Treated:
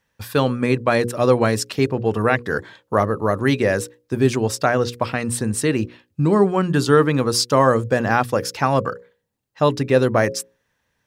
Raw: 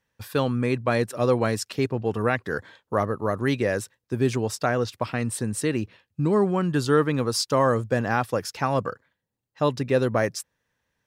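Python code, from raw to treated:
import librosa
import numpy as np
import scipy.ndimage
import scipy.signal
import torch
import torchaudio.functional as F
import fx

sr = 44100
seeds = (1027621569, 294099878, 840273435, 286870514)

y = fx.hum_notches(x, sr, base_hz=60, count=9)
y = y * librosa.db_to_amplitude(6.0)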